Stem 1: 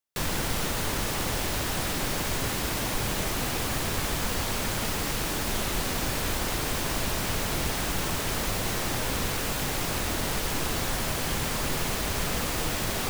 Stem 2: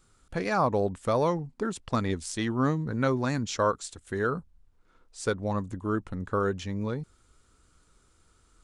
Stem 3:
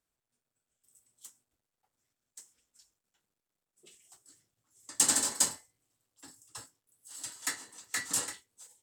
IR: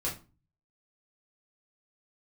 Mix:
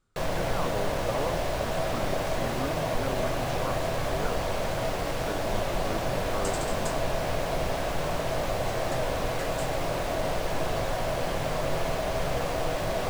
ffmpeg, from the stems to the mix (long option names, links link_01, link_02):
-filter_complex "[0:a]equalizer=frequency=650:width_type=o:width=0.67:gain=12.5,volume=-4.5dB,asplit=2[link_01][link_02];[link_02]volume=-10.5dB[link_03];[1:a]volume=-9dB[link_04];[2:a]adelay=1450,volume=-7dB[link_05];[3:a]atrim=start_sample=2205[link_06];[link_03][link_06]afir=irnorm=-1:irlink=0[link_07];[link_01][link_04][link_05][link_07]amix=inputs=4:normalize=0,highshelf=frequency=5700:gain=-11.5"